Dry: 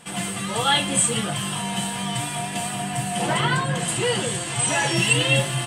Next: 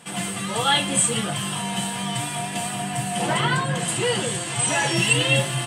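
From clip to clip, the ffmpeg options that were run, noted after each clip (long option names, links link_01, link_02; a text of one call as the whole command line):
ffmpeg -i in.wav -af "highpass=81" out.wav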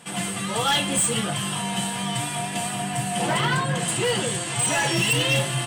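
ffmpeg -i in.wav -af "asoftclip=type=hard:threshold=-17dB" out.wav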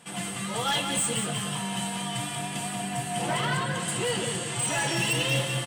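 ffmpeg -i in.wav -af "aecho=1:1:183|366|549|732|915:0.447|0.174|0.0679|0.0265|0.0103,volume=-5.5dB" out.wav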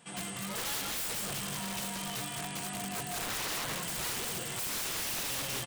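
ffmpeg -i in.wav -af "aresample=22050,aresample=44100,aeval=exprs='(mod(17.8*val(0)+1,2)-1)/17.8':channel_layout=same,volume=-5.5dB" out.wav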